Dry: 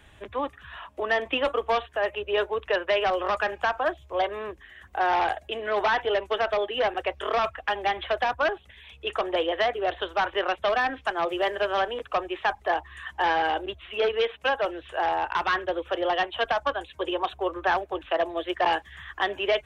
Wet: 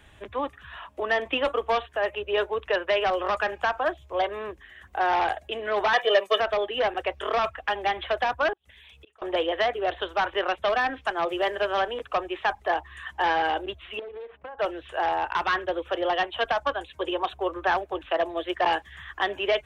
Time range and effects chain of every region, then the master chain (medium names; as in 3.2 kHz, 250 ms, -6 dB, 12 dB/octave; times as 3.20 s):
5.93–6.40 s: high-pass 200 Hz 24 dB/octave + treble shelf 4.6 kHz +10.5 dB + comb 1.7 ms, depth 99%
8.53–9.22 s: inverted gate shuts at -31 dBFS, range -29 dB + treble shelf 4.1 kHz +7 dB + compression 2.5:1, threshold -50 dBFS
13.99–14.59 s: low-pass 1.3 kHz + compression 20:1, threshold -35 dBFS + loudspeaker Doppler distortion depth 0.24 ms
whole clip: none